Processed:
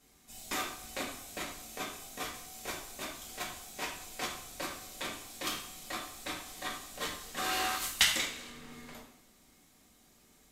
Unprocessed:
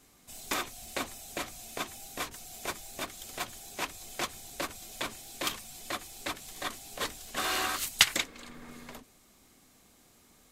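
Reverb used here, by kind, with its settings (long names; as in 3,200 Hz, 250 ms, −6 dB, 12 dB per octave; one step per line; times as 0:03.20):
coupled-rooms reverb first 0.56 s, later 1.8 s, from −17 dB, DRR −3 dB
level −7 dB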